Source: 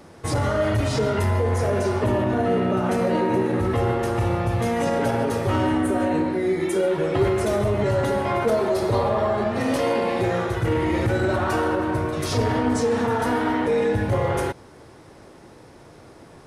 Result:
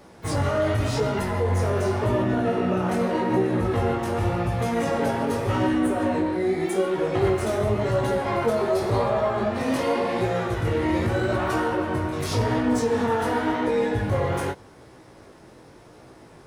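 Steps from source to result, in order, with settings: harmoniser +12 st -15 dB; chorus 0.87 Hz, delay 15.5 ms, depth 7 ms; gain +1 dB

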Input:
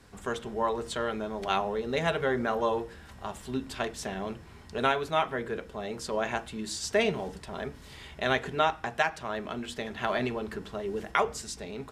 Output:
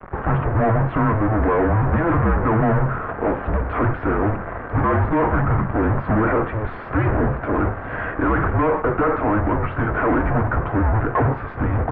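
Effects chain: fuzz box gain 47 dB, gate -53 dBFS; mistuned SSB -330 Hz 290–2000 Hz; gain -2 dB

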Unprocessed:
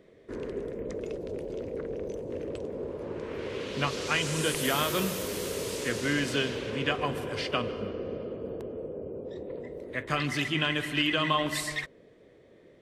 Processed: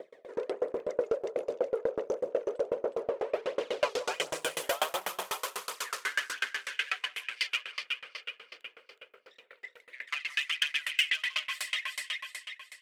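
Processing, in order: phaser 1.4 Hz, delay 2.5 ms, feedback 56%; on a send: echo with dull and thin repeats by turns 0.184 s, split 1300 Hz, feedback 64%, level -3 dB; on the sum: soft clip -26 dBFS, distortion -10 dB; HPF 52 Hz; limiter -29 dBFS, peak gain reduction 6.5 dB; high-pass sweep 580 Hz -> 2200 Hz, 4.47–7.24; dB-ramp tremolo decaying 8.1 Hz, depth 30 dB; gain +9 dB

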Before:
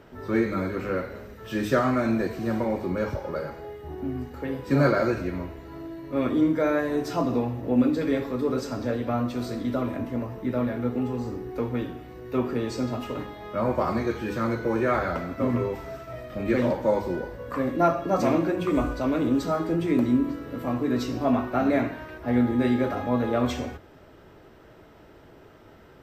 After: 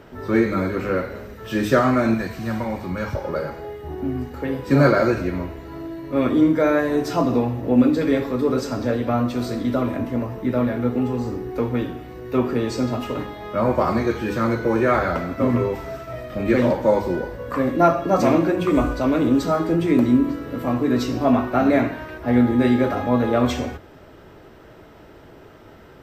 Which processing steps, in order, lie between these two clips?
2.14–3.15 bell 400 Hz -10.5 dB 1.3 oct; gain +5.5 dB

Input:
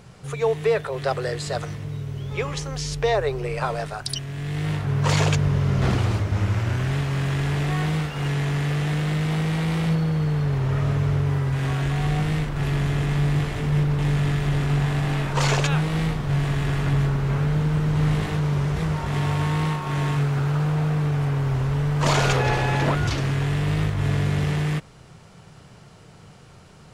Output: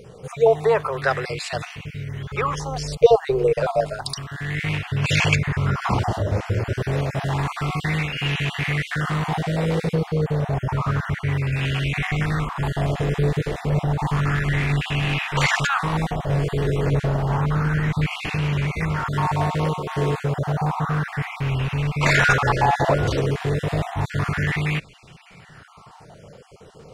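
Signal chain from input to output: random spectral dropouts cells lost 26%; LFO bell 0.3 Hz 450–2700 Hz +14 dB

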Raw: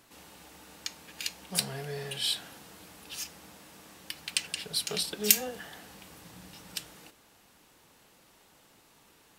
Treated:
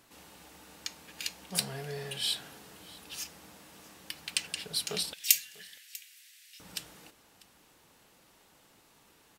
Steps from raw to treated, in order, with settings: 5.13–6.6 steep high-pass 1900 Hz 36 dB/oct; echo 0.645 s -21.5 dB; gain -1.5 dB

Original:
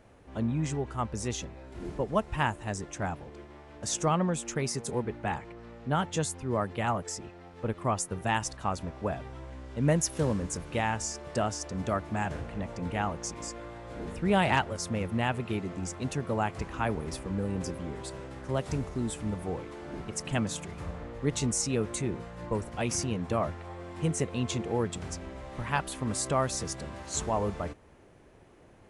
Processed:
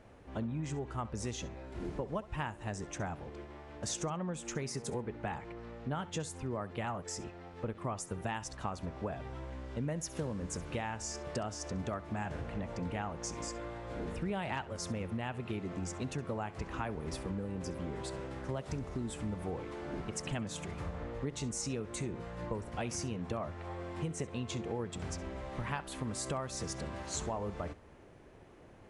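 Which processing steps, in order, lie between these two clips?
high shelf 8500 Hz -8 dB; compressor 6:1, threshold -34 dBFS, peak gain reduction 13.5 dB; flutter echo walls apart 11.4 m, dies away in 0.22 s

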